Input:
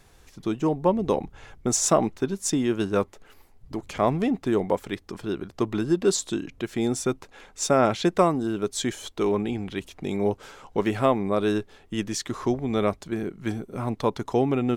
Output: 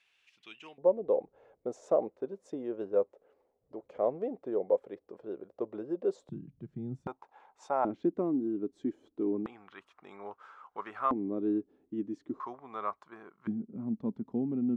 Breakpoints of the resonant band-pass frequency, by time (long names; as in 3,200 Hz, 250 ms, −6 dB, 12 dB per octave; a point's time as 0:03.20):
resonant band-pass, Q 4.5
2,700 Hz
from 0:00.78 520 Hz
from 0:06.29 150 Hz
from 0:07.07 870 Hz
from 0:07.85 290 Hz
from 0:09.46 1,200 Hz
from 0:11.11 290 Hz
from 0:12.40 1,100 Hz
from 0:13.47 220 Hz